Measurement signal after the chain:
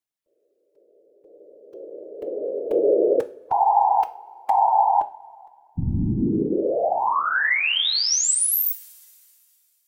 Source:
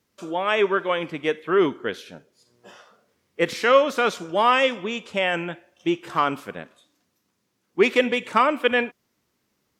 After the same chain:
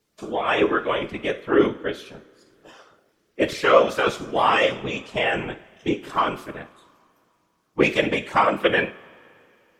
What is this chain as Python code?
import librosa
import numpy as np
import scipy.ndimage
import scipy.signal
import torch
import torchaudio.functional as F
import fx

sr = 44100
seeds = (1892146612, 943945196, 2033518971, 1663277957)

y = fx.spec_quant(x, sr, step_db=15)
y = fx.whisperise(y, sr, seeds[0])
y = fx.rev_double_slope(y, sr, seeds[1], early_s=0.36, late_s=2.7, knee_db=-20, drr_db=9.5)